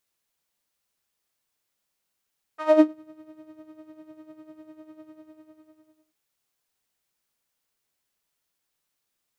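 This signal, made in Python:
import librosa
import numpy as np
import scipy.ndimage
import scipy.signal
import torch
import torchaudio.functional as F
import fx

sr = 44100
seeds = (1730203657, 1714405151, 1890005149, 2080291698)

y = fx.sub_patch_tremolo(sr, seeds[0], note=75, wave='saw', wave2='saw', interval_st=0, detune_cents=16, level2_db=-9.0, sub_db=-5.5, noise_db=-16, kind='bandpass', cutoff_hz=120.0, q=2.5, env_oct=3.5, env_decay_s=0.4, env_sustain_pct=5, attack_ms=220.0, decay_s=0.08, sustain_db=-22.0, release_s=1.11, note_s=2.44, lfo_hz=10.0, tremolo_db=11)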